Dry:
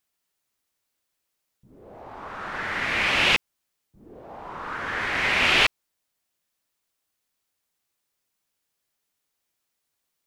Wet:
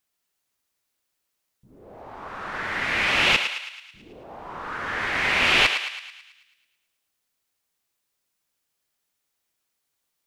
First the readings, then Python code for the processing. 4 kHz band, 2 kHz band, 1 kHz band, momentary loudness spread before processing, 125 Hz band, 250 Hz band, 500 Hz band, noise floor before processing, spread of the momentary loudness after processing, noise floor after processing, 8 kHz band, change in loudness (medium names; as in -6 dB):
+1.0 dB, +1.0 dB, +0.5 dB, 20 LU, 0.0 dB, 0.0 dB, +0.5 dB, -80 dBFS, 20 LU, -79 dBFS, +1.0 dB, +0.5 dB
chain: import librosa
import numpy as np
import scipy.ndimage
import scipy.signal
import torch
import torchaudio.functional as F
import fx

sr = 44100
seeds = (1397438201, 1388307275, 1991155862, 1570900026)

y = fx.echo_thinned(x, sr, ms=109, feedback_pct=56, hz=740.0, wet_db=-7.0)